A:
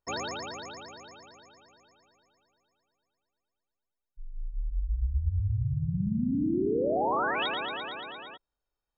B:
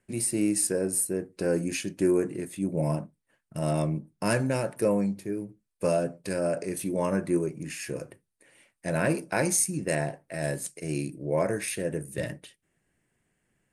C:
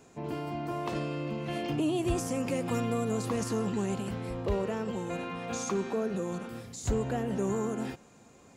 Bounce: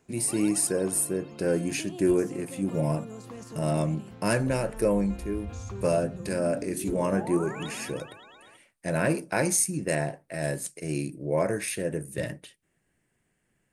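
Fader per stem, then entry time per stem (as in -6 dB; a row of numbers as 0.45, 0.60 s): -10.5, +0.5, -11.0 dB; 0.20, 0.00, 0.00 s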